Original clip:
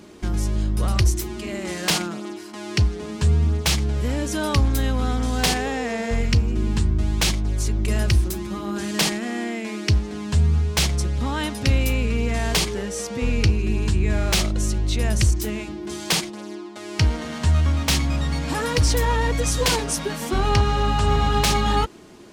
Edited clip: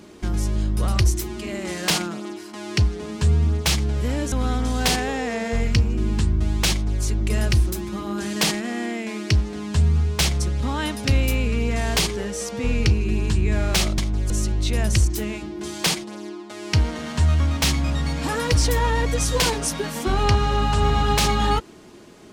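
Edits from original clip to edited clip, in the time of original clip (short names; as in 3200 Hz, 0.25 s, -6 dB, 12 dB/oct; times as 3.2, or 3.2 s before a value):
4.32–4.9 cut
7.29–7.61 copy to 14.56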